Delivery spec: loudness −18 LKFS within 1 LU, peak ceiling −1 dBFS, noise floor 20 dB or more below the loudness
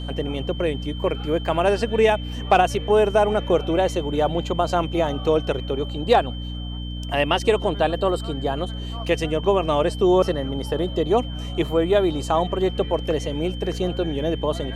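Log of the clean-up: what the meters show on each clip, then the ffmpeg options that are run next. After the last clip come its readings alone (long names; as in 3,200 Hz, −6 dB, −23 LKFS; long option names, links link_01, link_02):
mains hum 60 Hz; hum harmonics up to 300 Hz; level of the hum −28 dBFS; interfering tone 3,100 Hz; level of the tone −38 dBFS; integrated loudness −22.5 LKFS; sample peak −5.5 dBFS; target loudness −18.0 LKFS
→ -af "bandreject=frequency=60:width_type=h:width=6,bandreject=frequency=120:width_type=h:width=6,bandreject=frequency=180:width_type=h:width=6,bandreject=frequency=240:width_type=h:width=6,bandreject=frequency=300:width_type=h:width=6"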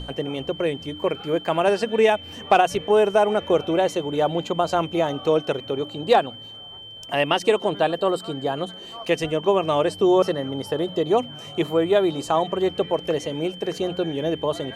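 mains hum none found; interfering tone 3,100 Hz; level of the tone −38 dBFS
→ -af "bandreject=frequency=3100:width=30"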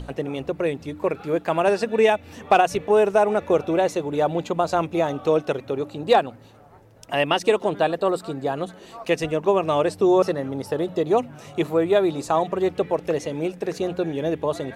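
interfering tone none found; integrated loudness −22.5 LKFS; sample peak −6.0 dBFS; target loudness −18.0 LKFS
→ -af "volume=4.5dB"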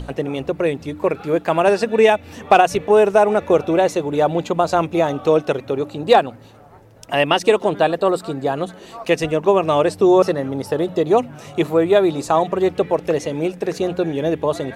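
integrated loudness −18.0 LKFS; sample peak −1.5 dBFS; background noise floor −42 dBFS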